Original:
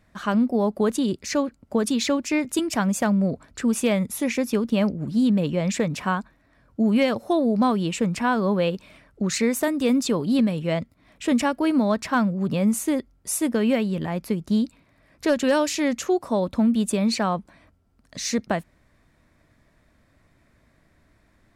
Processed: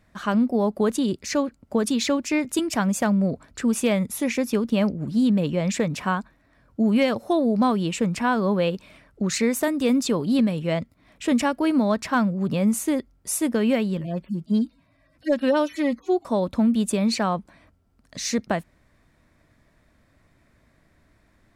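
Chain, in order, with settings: 13.97–16.25 median-filter separation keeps harmonic

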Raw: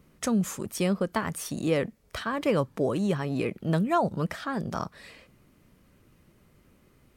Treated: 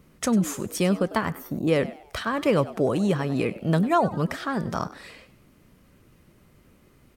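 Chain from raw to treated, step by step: spectral gain 1.32–1.68, 1100–12000 Hz -19 dB; on a send: frequency-shifting echo 98 ms, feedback 37%, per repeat +100 Hz, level -17 dB; on the sum: gain +3.5 dB

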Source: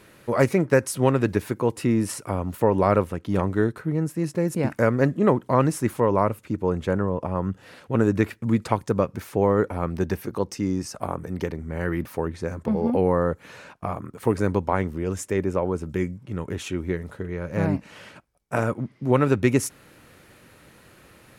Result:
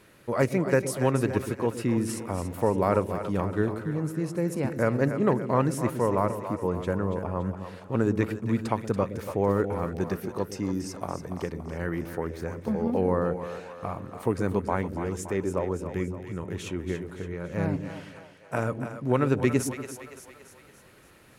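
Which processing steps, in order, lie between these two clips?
split-band echo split 470 Hz, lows 0.12 s, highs 0.284 s, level -9 dB; gain -4.5 dB

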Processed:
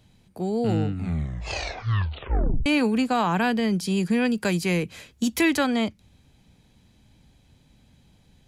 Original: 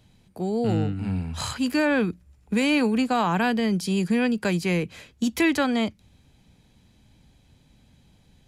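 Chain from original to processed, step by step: 0.9 tape stop 1.76 s; 4.25–5.67 high shelf 5400 Hz +5.5 dB

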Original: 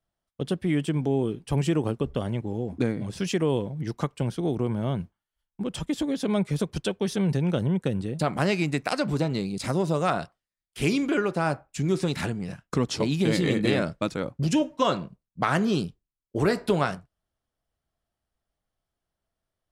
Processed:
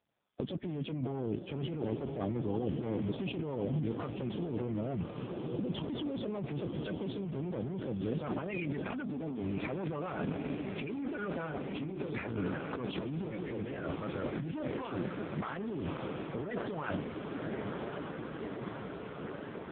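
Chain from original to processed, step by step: bin magnitudes rounded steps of 30 dB; 8.82–9.44 bell 250 Hz +14 dB 0.29 oct; soft clip -24.5 dBFS, distortion -10 dB; 11.33–12.37 doubler 26 ms -4 dB; on a send: diffused feedback echo 1.117 s, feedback 75%, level -11.5 dB; on the sum: negative-ratio compressor -34 dBFS, ratio -1; AMR-NB 5.15 kbps 8000 Hz

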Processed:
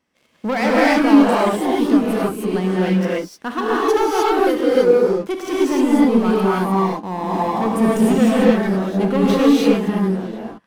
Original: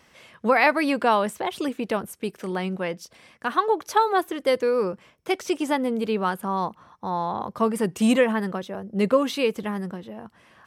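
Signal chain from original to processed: bell 270 Hz +9 dB 1.2 oct; sample leveller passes 3; non-linear reverb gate 0.33 s rising, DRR -6.5 dB; gain -12 dB

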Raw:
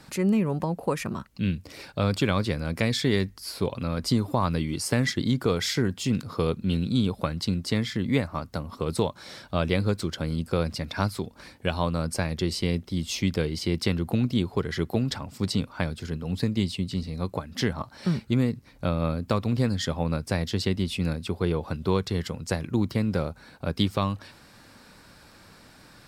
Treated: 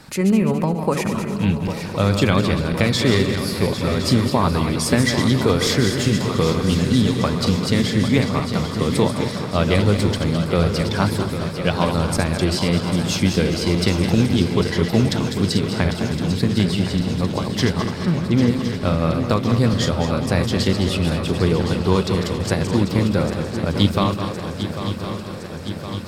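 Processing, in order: regenerating reverse delay 0.105 s, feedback 65%, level -7 dB; 18.05–18.48 LPF 3000 Hz; swung echo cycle 1.064 s, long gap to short 3:1, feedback 68%, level -10.5 dB; gain +6 dB

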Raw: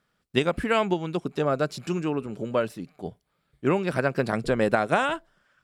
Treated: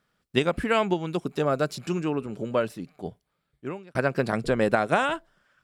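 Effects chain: 1.07–1.75 high shelf 9200 Hz +8.5 dB; 3.06–3.95 fade out

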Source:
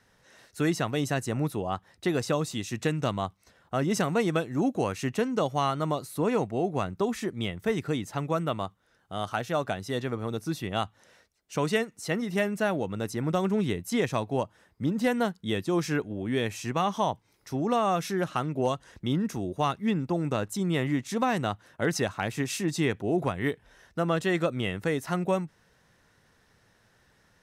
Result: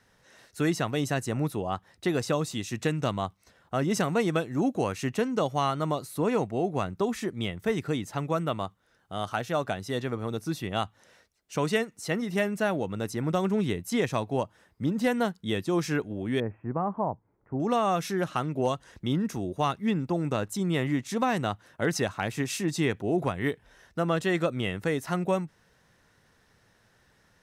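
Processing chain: 16.4–17.6 Gaussian blur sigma 6.8 samples

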